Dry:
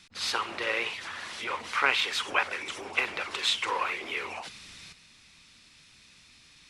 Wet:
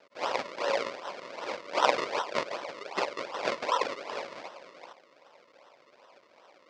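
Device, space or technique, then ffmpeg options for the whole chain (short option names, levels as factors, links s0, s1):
circuit-bent sampling toy: -af "acrusher=samples=38:mix=1:aa=0.000001:lfo=1:lforange=38:lforate=2.6,highpass=550,equalizer=f=560:t=q:w=4:g=8,equalizer=f=1000:t=q:w=4:g=6,equalizer=f=2200:t=q:w=4:g=6,equalizer=f=4700:t=q:w=4:g=4,lowpass=f=5900:w=0.5412,lowpass=f=5900:w=1.3066"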